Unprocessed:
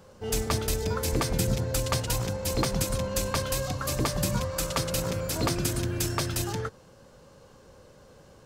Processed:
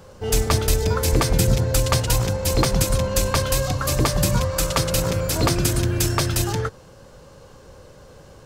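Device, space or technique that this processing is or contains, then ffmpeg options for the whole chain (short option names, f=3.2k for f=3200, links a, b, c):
low shelf boost with a cut just above: -af "lowshelf=f=90:g=5,equalizer=f=220:t=o:w=0.52:g=-3.5,volume=7dB"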